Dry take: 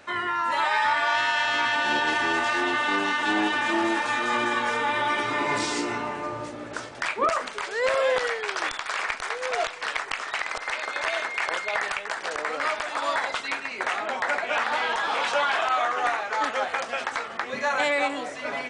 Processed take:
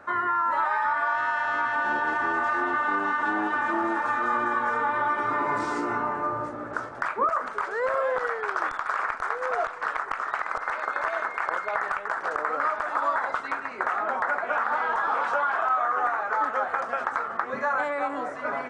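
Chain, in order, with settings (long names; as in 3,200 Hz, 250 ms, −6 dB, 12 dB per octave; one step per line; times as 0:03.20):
parametric band 1,300 Hz +4.5 dB 0.71 octaves
downward compressor, threshold −23 dBFS, peak gain reduction 8 dB
high shelf with overshoot 2,000 Hz −12 dB, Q 1.5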